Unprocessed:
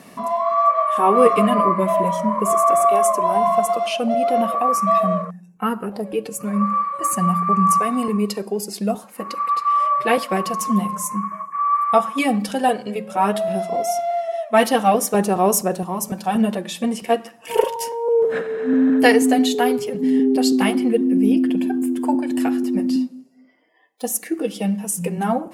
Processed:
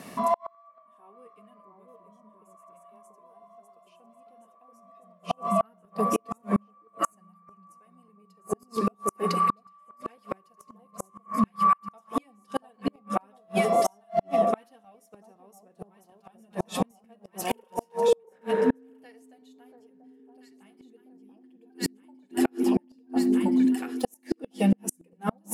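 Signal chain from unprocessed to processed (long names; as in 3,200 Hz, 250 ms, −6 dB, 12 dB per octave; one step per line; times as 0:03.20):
on a send: delay that swaps between a low-pass and a high-pass 686 ms, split 1,000 Hz, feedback 55%, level −3 dB
on the sum: gate with flip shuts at −12 dBFS, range −39 dB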